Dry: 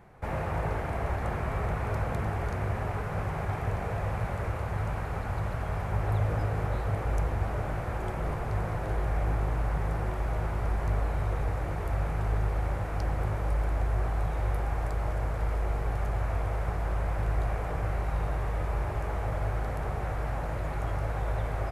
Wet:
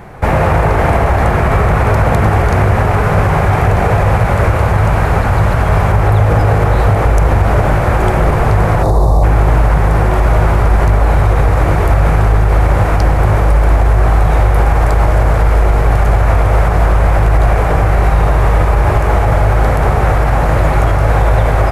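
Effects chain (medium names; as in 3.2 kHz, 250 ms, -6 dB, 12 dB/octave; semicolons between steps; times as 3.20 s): time-frequency box 8.83–9.23 s, 1.2–3.5 kHz -25 dB; band-passed feedback delay 74 ms, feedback 80%, band-pass 980 Hz, level -12 dB; loudness maximiser +22.5 dB; trim -1 dB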